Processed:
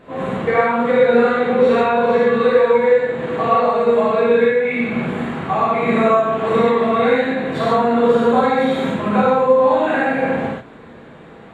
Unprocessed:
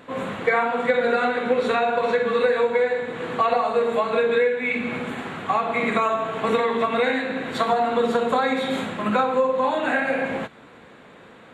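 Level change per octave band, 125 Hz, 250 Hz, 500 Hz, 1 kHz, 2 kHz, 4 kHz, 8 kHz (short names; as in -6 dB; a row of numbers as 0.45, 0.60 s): +10.0 dB, +8.5 dB, +7.0 dB, +5.0 dB, +2.5 dB, +1.0 dB, n/a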